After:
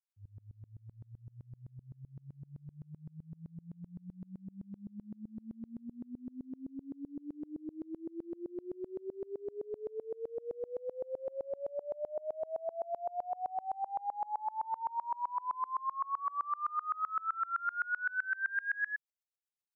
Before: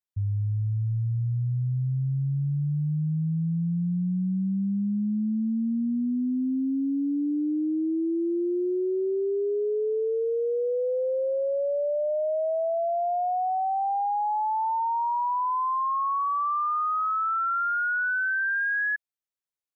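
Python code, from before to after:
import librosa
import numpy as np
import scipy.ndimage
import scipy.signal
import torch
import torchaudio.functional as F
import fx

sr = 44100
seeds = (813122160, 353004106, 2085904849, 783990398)

y = fx.highpass(x, sr, hz=860.0, slope=6)
y = fx.tremolo_decay(y, sr, direction='swelling', hz=7.8, depth_db=29)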